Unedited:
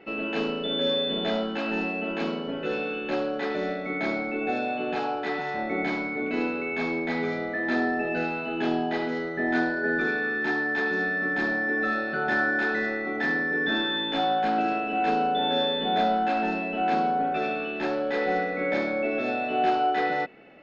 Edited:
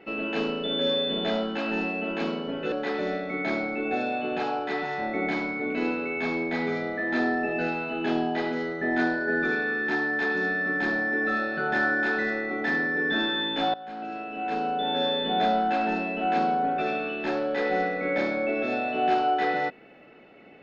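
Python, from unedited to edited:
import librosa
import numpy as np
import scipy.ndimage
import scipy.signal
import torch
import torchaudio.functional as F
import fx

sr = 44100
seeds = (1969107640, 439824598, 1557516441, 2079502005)

y = fx.edit(x, sr, fx.cut(start_s=2.72, length_s=0.56),
    fx.fade_in_from(start_s=14.3, length_s=1.49, floor_db=-18.5), tone=tone)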